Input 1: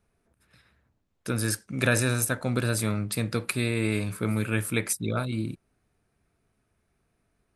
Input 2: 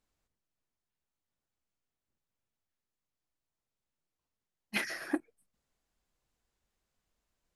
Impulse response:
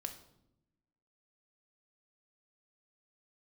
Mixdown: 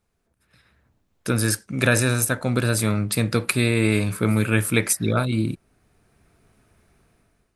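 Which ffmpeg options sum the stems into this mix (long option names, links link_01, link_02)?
-filter_complex "[0:a]dynaudnorm=framelen=310:gausssize=5:maxgain=16.5dB,volume=-3dB,asplit=2[link_01][link_02];[1:a]acompressor=threshold=-41dB:ratio=6,volume=2.5dB[link_03];[link_02]apad=whole_len=333094[link_04];[link_03][link_04]sidechaincompress=threshold=-24dB:ratio=3:attack=11:release=726[link_05];[link_01][link_05]amix=inputs=2:normalize=0"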